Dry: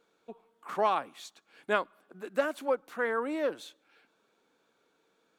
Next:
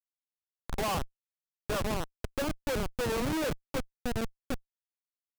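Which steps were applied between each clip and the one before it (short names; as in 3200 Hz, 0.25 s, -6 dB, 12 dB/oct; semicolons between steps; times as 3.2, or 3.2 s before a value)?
inverse Chebyshev low-pass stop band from 6700 Hz, stop band 50 dB; echo 1.056 s -7.5 dB; Schmitt trigger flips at -30.5 dBFS; gain +5 dB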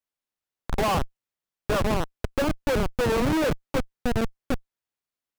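high shelf 3800 Hz -7 dB; gain +8 dB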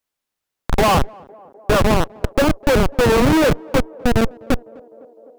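narrowing echo 0.253 s, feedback 83%, band-pass 520 Hz, level -23 dB; gain +9 dB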